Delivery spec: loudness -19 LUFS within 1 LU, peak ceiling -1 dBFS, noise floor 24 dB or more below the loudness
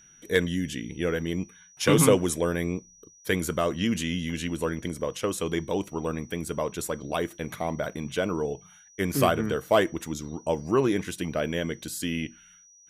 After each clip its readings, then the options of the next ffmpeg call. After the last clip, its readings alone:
steady tone 5.8 kHz; tone level -53 dBFS; loudness -28.0 LUFS; peak level -7.5 dBFS; loudness target -19.0 LUFS
-> -af "bandreject=f=5800:w=30"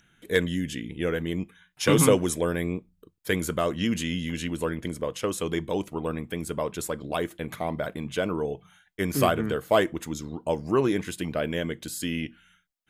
steady tone not found; loudness -28.0 LUFS; peak level -7.5 dBFS; loudness target -19.0 LUFS
-> -af "volume=2.82,alimiter=limit=0.891:level=0:latency=1"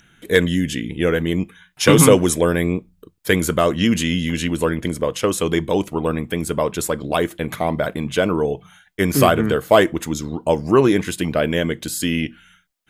loudness -19.0 LUFS; peak level -1.0 dBFS; noise floor -60 dBFS

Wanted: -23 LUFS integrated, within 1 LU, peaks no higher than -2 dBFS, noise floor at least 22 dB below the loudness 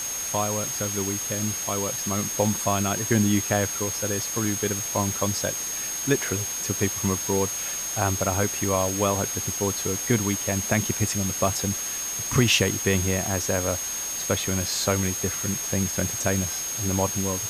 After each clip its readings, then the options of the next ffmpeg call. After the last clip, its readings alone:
steady tone 6.5 kHz; tone level -29 dBFS; noise floor -31 dBFS; noise floor target -47 dBFS; loudness -24.5 LUFS; peak level -7.0 dBFS; loudness target -23.0 LUFS
-> -af "bandreject=f=6500:w=30"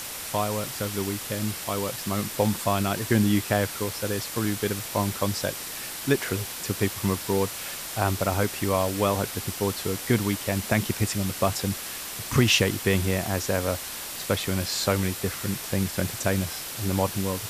steady tone not found; noise floor -36 dBFS; noise floor target -49 dBFS
-> -af "afftdn=nr=13:nf=-36"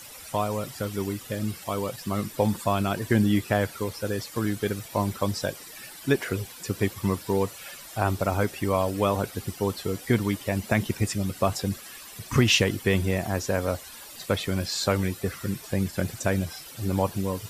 noise floor -44 dBFS; noise floor target -49 dBFS
-> -af "afftdn=nr=6:nf=-44"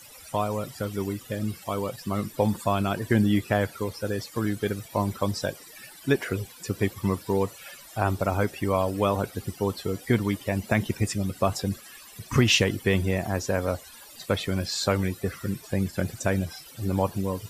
noise floor -48 dBFS; noise floor target -50 dBFS
-> -af "afftdn=nr=6:nf=-48"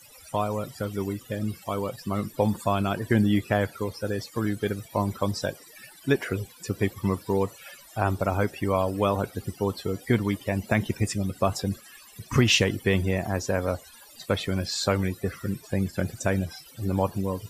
noise floor -51 dBFS; loudness -27.5 LUFS; peak level -7.5 dBFS; loudness target -23.0 LUFS
-> -af "volume=1.68"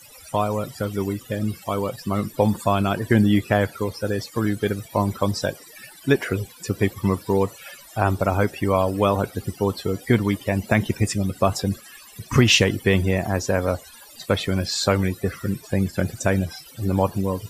loudness -23.0 LUFS; peak level -3.0 dBFS; noise floor -46 dBFS

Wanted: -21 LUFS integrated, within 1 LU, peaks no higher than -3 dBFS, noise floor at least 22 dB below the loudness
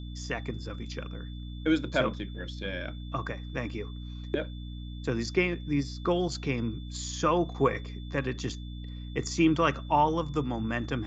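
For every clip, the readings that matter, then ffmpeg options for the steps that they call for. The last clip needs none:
hum 60 Hz; highest harmonic 300 Hz; hum level -37 dBFS; steady tone 3.5 kHz; tone level -52 dBFS; loudness -30.5 LUFS; peak level -11.0 dBFS; loudness target -21.0 LUFS
-> -af "bandreject=f=60:t=h:w=4,bandreject=f=120:t=h:w=4,bandreject=f=180:t=h:w=4,bandreject=f=240:t=h:w=4,bandreject=f=300:t=h:w=4"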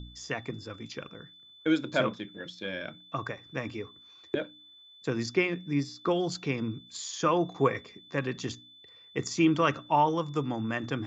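hum not found; steady tone 3.5 kHz; tone level -52 dBFS
-> -af "bandreject=f=3500:w=30"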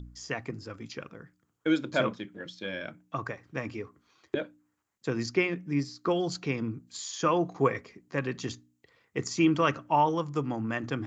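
steady tone not found; loudness -31.0 LUFS; peak level -11.0 dBFS; loudness target -21.0 LUFS
-> -af "volume=3.16,alimiter=limit=0.708:level=0:latency=1"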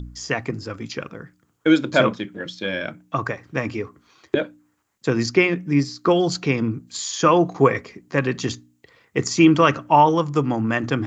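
loudness -21.0 LUFS; peak level -3.0 dBFS; noise floor -67 dBFS

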